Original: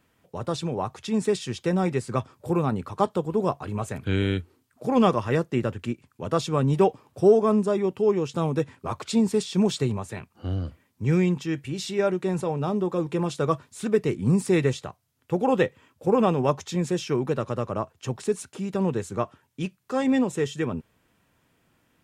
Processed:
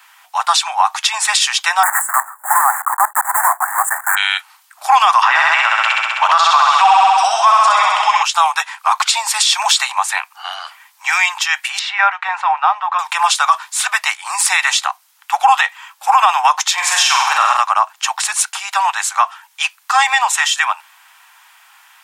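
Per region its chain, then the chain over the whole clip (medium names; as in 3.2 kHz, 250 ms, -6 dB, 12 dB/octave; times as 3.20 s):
1.83–4.17 s: block-companded coder 3-bit + Chebyshev band-stop 1.8–7.6 kHz, order 4 + dynamic bell 4.3 kHz, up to +4 dB, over -53 dBFS, Q 1.9
5.22–8.23 s: low-pass 5.3 kHz + flutter echo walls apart 11.1 m, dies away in 1.4 s + three bands compressed up and down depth 70%
11.79–12.99 s: Chebyshev low-pass 2 kHz + bass shelf 250 Hz -11.5 dB
16.73–17.57 s: bass shelf 470 Hz +6.5 dB + flutter echo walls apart 8.1 m, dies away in 0.85 s
whole clip: steep high-pass 780 Hz 72 dB/octave; loudness maximiser +24.5 dB; trim -1 dB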